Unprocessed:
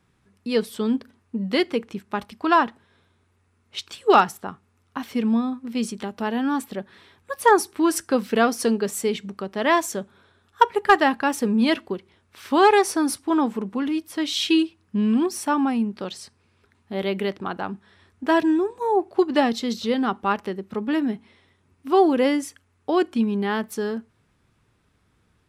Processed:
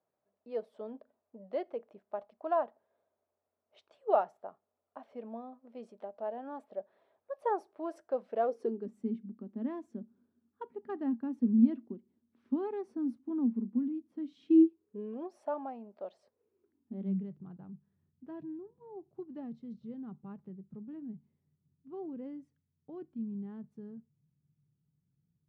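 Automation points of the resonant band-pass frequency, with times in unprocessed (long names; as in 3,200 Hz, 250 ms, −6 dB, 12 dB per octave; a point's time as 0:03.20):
resonant band-pass, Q 8.1
0:08.40 620 Hz
0:08.91 240 Hz
0:14.32 240 Hz
0:15.31 630 Hz
0:16.18 630 Hz
0:17.32 150 Hz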